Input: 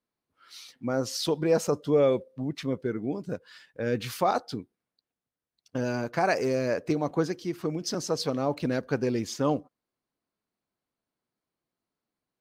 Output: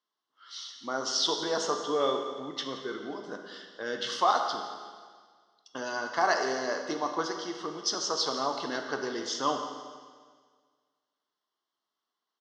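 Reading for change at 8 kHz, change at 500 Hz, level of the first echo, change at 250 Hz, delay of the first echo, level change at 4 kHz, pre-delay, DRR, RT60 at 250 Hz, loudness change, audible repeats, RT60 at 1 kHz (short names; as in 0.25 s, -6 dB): +3.0 dB, -5.5 dB, -15.0 dB, -8.5 dB, 0.174 s, +6.0 dB, 14 ms, 3.5 dB, 1.7 s, -2.0 dB, 1, 1.7 s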